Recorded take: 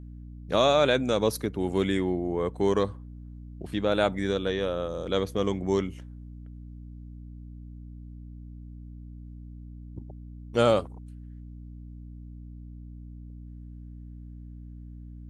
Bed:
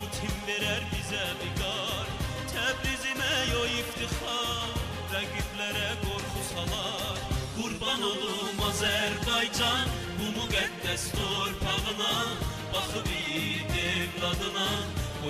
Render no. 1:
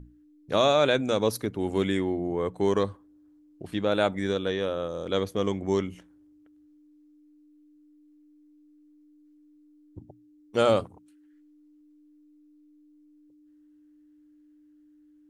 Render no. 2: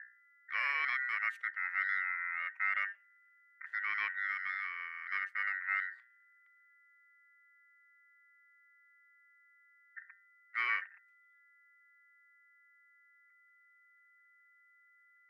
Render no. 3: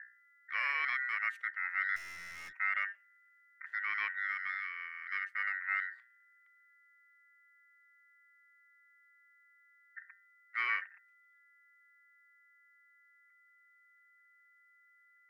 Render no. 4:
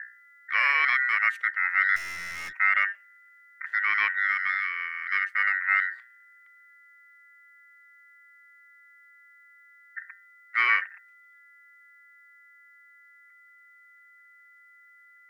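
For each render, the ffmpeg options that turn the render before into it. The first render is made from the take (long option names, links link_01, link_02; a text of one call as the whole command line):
ffmpeg -i in.wav -af "bandreject=frequency=60:width_type=h:width=6,bandreject=frequency=120:width_type=h:width=6,bandreject=frequency=180:width_type=h:width=6,bandreject=frequency=240:width_type=h:width=6" out.wav
ffmpeg -i in.wav -af "aeval=exprs='val(0)*sin(2*PI*1700*n/s)':channel_layout=same,bandpass=frequency=1800:width_type=q:width=5.5:csg=0" out.wav
ffmpeg -i in.wav -filter_complex "[0:a]asettb=1/sr,asplit=3[link_01][link_02][link_03];[link_01]atrim=end=1.964[link_04];[link_02]atrim=start=1.96:end=2.53,asetpts=PTS-STARTPTS,afade=type=in:duration=0.004:curve=qsin,afade=type=out:start_time=0.566:duration=0.004:curve=qsin,aeval=exprs='(tanh(178*val(0)+0.35)-tanh(0.35))/178':channel_layout=same[link_05];[link_03]atrim=start=2.526[link_06];[link_04][link_05]acrossfade=duration=0.004:curve1=hsin:curve2=qsin[link_07];[link_07][link_06]acrossfade=duration=0.004:curve1=qsin:curve2=hsin,asettb=1/sr,asplit=3[link_08][link_09][link_10];[link_08]atrim=end=4.594[link_11];[link_09]atrim=start=4.59:end=5.35,asetpts=PTS-STARTPTS,afade=type=in:duration=0.004:curve=qsin,afade=type=out:start_time=0.756:duration=0.004:curve=qsin,equalizer=frequency=820:width_type=o:width=0.58:gain=-12[link_12];[link_10]atrim=start=5.346[link_13];[link_11][link_12]acrossfade=duration=0.004:curve1=hsin:curve2=qsin[link_14];[link_14][link_13]acrossfade=duration=0.004:curve1=qsin:curve2=hsin" out.wav
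ffmpeg -i in.wav -af "volume=11dB" out.wav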